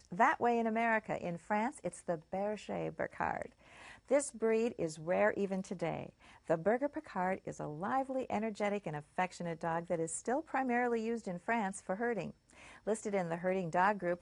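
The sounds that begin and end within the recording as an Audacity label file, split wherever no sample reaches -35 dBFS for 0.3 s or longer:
4.110000	6.060000	sound
6.500000	12.270000	sound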